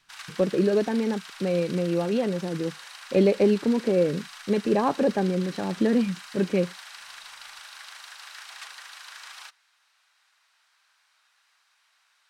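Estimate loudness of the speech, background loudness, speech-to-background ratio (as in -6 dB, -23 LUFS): -25.0 LUFS, -41.5 LUFS, 16.5 dB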